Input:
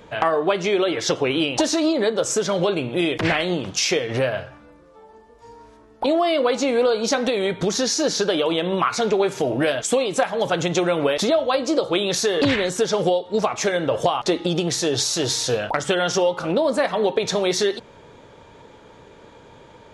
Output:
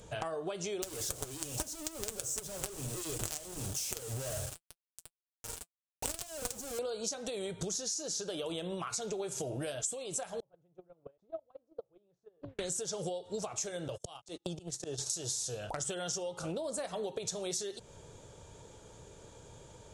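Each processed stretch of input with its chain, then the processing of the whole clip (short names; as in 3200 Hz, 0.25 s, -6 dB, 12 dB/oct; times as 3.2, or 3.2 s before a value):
0.82–6.79 high shelf 2300 Hz -11 dB + companded quantiser 2-bit + notch comb 170 Hz
10.4–12.59 gate -15 dBFS, range -40 dB + LPF 1000 Hz
13.88–15.1 gate -23 dBFS, range -41 dB + auto swell 0.486 s + three-band squash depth 100%
whole clip: ten-band EQ 250 Hz -11 dB, 500 Hz -4 dB, 1000 Hz -9 dB, 2000 Hz -12 dB, 4000 Hz -6 dB, 8000 Hz +11 dB; compressor 6:1, threshold -35 dBFS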